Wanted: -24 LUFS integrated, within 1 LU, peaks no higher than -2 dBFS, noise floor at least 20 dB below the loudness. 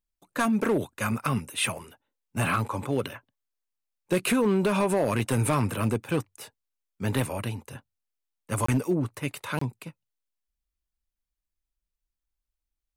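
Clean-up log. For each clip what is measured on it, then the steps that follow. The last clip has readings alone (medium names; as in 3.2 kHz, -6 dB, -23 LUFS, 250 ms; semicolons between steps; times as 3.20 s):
clipped samples 0.6%; clipping level -17.5 dBFS; dropouts 2; longest dropout 24 ms; loudness -27.5 LUFS; peak level -17.5 dBFS; loudness target -24.0 LUFS
-> clip repair -17.5 dBFS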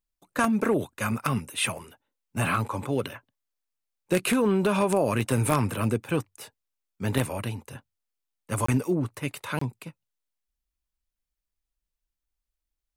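clipped samples 0.0%; dropouts 2; longest dropout 24 ms
-> interpolate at 8.66/9.59 s, 24 ms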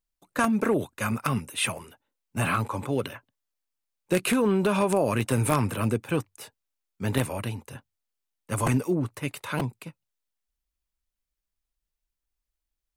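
dropouts 0; loudness -27.0 LUFS; peak level -8.5 dBFS; loudness target -24.0 LUFS
-> trim +3 dB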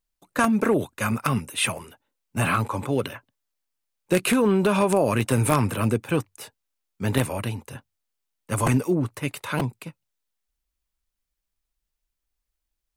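loudness -24.0 LUFS; peak level -5.5 dBFS; noise floor -83 dBFS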